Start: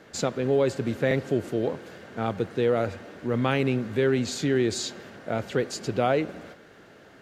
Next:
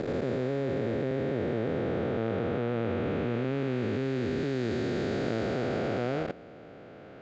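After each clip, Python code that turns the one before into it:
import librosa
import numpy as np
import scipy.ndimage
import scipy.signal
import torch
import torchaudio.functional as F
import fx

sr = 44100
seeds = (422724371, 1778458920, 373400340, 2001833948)

y = fx.spec_blur(x, sr, span_ms=1420.0)
y = fx.level_steps(y, sr, step_db=18)
y = fx.air_absorb(y, sr, metres=160.0)
y = y * librosa.db_to_amplitude(6.5)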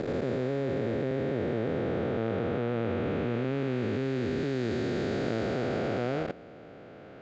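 y = x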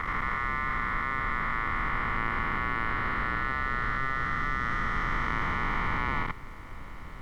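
y = x * np.sin(2.0 * np.pi * 1600.0 * np.arange(len(x)) / sr)
y = fx.tilt_eq(y, sr, slope=-4.0)
y = fx.dmg_noise_colour(y, sr, seeds[0], colour='brown', level_db=-47.0)
y = y * librosa.db_to_amplitude(4.0)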